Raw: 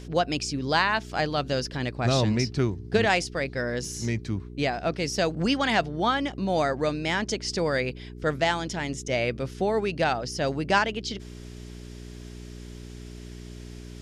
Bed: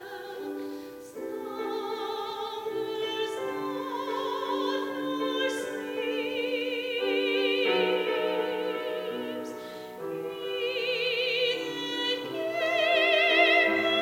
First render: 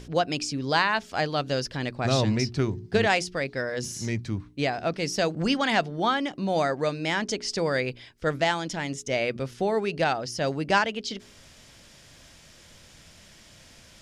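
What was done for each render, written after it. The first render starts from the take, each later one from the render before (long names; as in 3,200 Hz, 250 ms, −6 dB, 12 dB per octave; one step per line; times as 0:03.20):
hum removal 60 Hz, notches 7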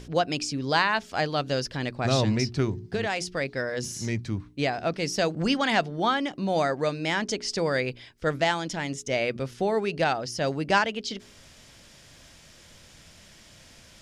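0:02.80–0:03.37: downward compressor 3 to 1, threshold −25 dBFS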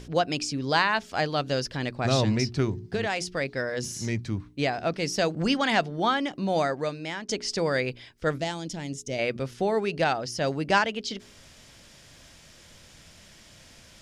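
0:06.56–0:07.29: fade out, to −11.5 dB
0:08.38–0:09.19: parametric band 1,400 Hz −12 dB 2.3 octaves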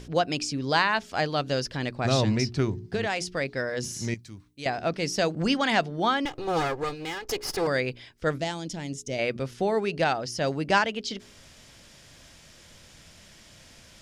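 0:04.14–0:04.66: first-order pre-emphasis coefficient 0.8
0:06.25–0:07.67: lower of the sound and its delayed copy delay 2.4 ms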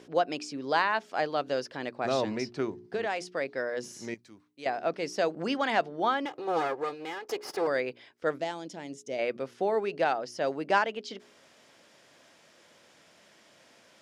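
high-pass filter 350 Hz 12 dB per octave
high-shelf EQ 2,300 Hz −11.5 dB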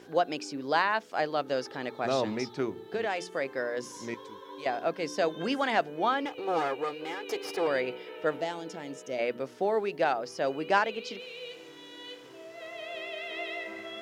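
mix in bed −15.5 dB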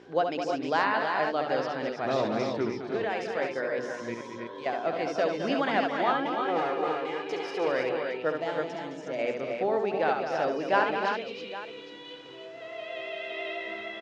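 high-frequency loss of the air 120 metres
multi-tap delay 69/213/301/327/812 ms −6/−8.5/−9.5/−5.5/−14.5 dB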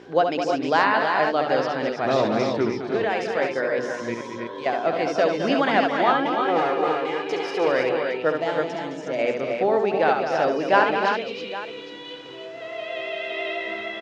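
level +6.5 dB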